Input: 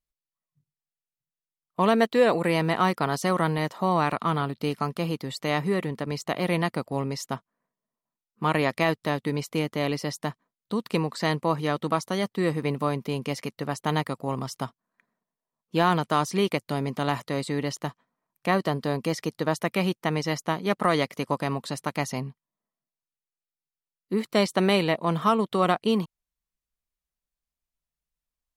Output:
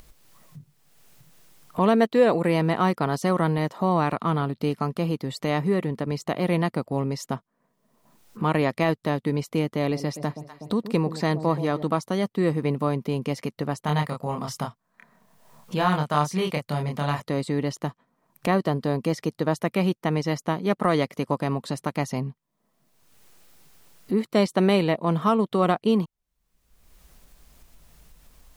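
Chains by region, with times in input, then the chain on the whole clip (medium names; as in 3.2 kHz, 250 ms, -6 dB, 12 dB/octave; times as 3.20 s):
9.79–11.83 s: band-stop 3 kHz, Q 15 + echo whose repeats swap between lows and highs 123 ms, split 800 Hz, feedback 52%, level -12 dB
13.81–17.20 s: peaking EQ 320 Hz -10 dB 1.1 oct + doubling 27 ms -3 dB
whole clip: tilt shelf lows +3.5 dB, about 880 Hz; upward compressor, threshold -24 dBFS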